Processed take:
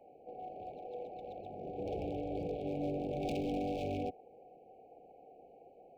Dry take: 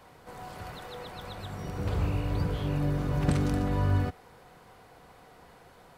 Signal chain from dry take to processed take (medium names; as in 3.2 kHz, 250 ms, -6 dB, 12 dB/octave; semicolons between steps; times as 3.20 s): local Wiener filter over 25 samples; three-band isolator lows -22 dB, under 300 Hz, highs -20 dB, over 2.6 kHz; wavefolder -32 dBFS; brick-wall FIR band-stop 840–2200 Hz; decimation joined by straight lines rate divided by 2×; trim +2.5 dB